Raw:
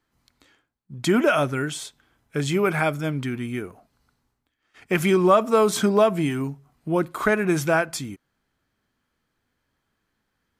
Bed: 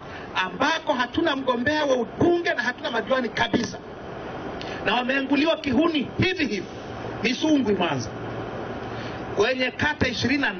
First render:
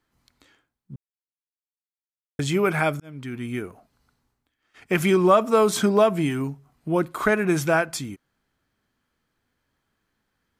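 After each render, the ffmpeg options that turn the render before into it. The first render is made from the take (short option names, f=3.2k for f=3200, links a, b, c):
-filter_complex "[0:a]asplit=4[a][b][c][d];[a]atrim=end=0.96,asetpts=PTS-STARTPTS,afade=t=out:st=0.956:d=0.004:c=hsin[e];[b]atrim=start=0.96:end=2.39,asetpts=PTS-STARTPTS,volume=0[f];[c]atrim=start=2.39:end=3,asetpts=PTS-STARTPTS,afade=t=in:d=0.004:c=hsin,afade=t=out:st=0.606:d=0.004:c=hsin[g];[d]atrim=start=3,asetpts=PTS-STARTPTS,afade=t=in:d=0.53[h];[e][f][g][h]concat=n=4:v=0:a=1"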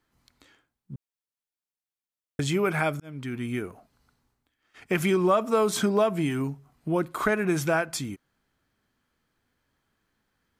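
-af "acompressor=threshold=-27dB:ratio=1.5"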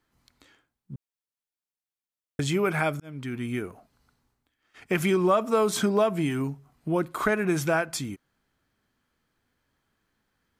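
-af anull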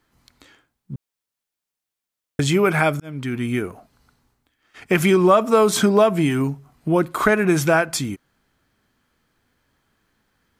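-af "volume=7.5dB"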